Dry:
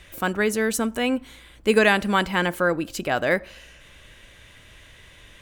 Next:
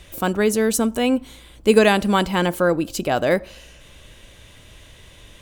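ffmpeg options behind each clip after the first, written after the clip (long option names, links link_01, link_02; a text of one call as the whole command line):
ffmpeg -i in.wav -af "equalizer=frequency=1800:width_type=o:width=1.2:gain=-8,volume=5dB" out.wav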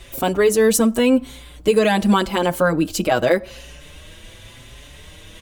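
ffmpeg -i in.wav -filter_complex "[0:a]areverse,acompressor=mode=upward:threshold=-40dB:ratio=2.5,areverse,alimiter=limit=-9.5dB:level=0:latency=1:release=197,asplit=2[link_01][link_02];[link_02]adelay=5.5,afreqshift=0.88[link_03];[link_01][link_03]amix=inputs=2:normalize=1,volume=6.5dB" out.wav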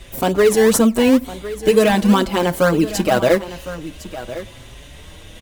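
ffmpeg -i in.wav -filter_complex "[0:a]asplit=2[link_01][link_02];[link_02]acrusher=samples=24:mix=1:aa=0.000001:lfo=1:lforange=24:lforate=2.1,volume=-8dB[link_03];[link_01][link_03]amix=inputs=2:normalize=0,aecho=1:1:1057:0.188" out.wav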